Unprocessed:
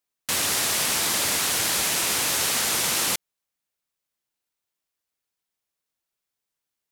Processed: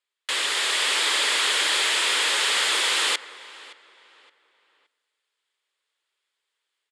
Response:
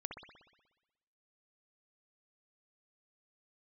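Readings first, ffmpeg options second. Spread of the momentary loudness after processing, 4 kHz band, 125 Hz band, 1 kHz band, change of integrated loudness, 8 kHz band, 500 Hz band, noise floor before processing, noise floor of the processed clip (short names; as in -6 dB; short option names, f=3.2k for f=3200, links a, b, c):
5 LU, +5.0 dB, under -30 dB, +2.0 dB, +1.0 dB, -4.5 dB, -0.5 dB, -85 dBFS, -82 dBFS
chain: -filter_complex "[0:a]dynaudnorm=f=490:g=3:m=5.5dB,asplit=2[a][b];[b]highpass=f=720:p=1,volume=16dB,asoftclip=type=tanh:threshold=-5.5dB[c];[a][c]amix=inputs=2:normalize=0,lowpass=f=5.1k:p=1,volume=-6dB,highpass=f=340:w=0.5412,highpass=f=340:w=1.3066,equalizer=f=420:t=q:w=4:g=3,equalizer=f=710:t=q:w=4:g=-8,equalizer=f=1.9k:t=q:w=4:g=3,equalizer=f=3.3k:t=q:w=4:g=6,equalizer=f=5.9k:t=q:w=4:g=-10,lowpass=f=9k:w=0.5412,lowpass=f=9k:w=1.3066,asplit=2[d][e];[e]adelay=569,lowpass=f=3.5k:p=1,volume=-19dB,asplit=2[f][g];[g]adelay=569,lowpass=f=3.5k:p=1,volume=0.35,asplit=2[h][i];[i]adelay=569,lowpass=f=3.5k:p=1,volume=0.35[j];[d][f][h][j]amix=inputs=4:normalize=0,asplit=2[k][l];[1:a]atrim=start_sample=2205,asetrate=26019,aresample=44100[m];[l][m]afir=irnorm=-1:irlink=0,volume=-15.5dB[n];[k][n]amix=inputs=2:normalize=0,volume=-8dB"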